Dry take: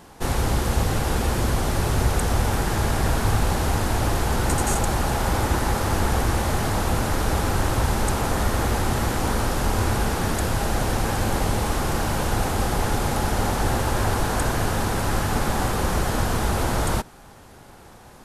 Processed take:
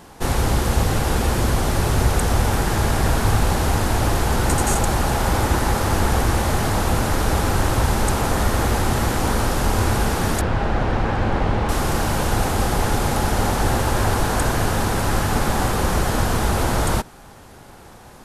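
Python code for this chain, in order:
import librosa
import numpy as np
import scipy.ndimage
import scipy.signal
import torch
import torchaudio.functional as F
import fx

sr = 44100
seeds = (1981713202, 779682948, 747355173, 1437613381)

y = fx.lowpass(x, sr, hz=2700.0, slope=12, at=(10.41, 11.69))
y = F.gain(torch.from_numpy(y), 3.0).numpy()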